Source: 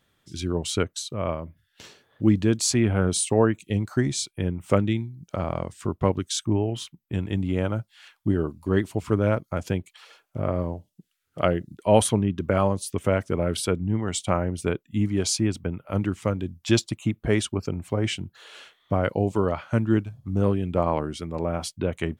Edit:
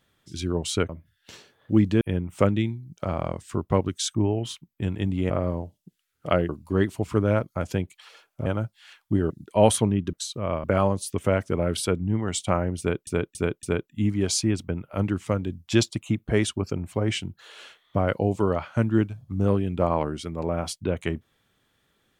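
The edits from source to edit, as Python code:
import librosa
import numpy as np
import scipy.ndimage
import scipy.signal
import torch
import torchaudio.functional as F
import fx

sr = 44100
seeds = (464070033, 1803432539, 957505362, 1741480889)

y = fx.edit(x, sr, fx.move(start_s=0.89, length_s=0.51, to_s=12.44),
    fx.cut(start_s=2.52, length_s=1.8),
    fx.swap(start_s=7.61, length_s=0.84, other_s=10.42, other_length_s=1.19),
    fx.repeat(start_s=14.59, length_s=0.28, count=4), tone=tone)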